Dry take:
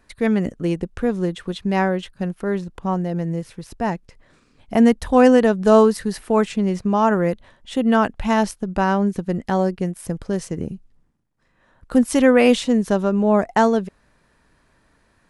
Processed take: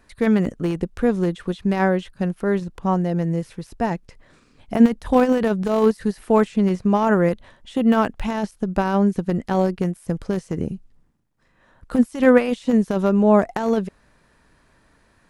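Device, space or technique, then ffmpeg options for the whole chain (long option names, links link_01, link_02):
de-esser from a sidechain: -filter_complex "[0:a]asplit=2[link_01][link_02];[link_02]highpass=frequency=4700:width=0.5412,highpass=frequency=4700:width=1.3066,apad=whole_len=674726[link_03];[link_01][link_03]sidechaincompress=threshold=-49dB:ratio=8:attack=2:release=23,volume=2dB"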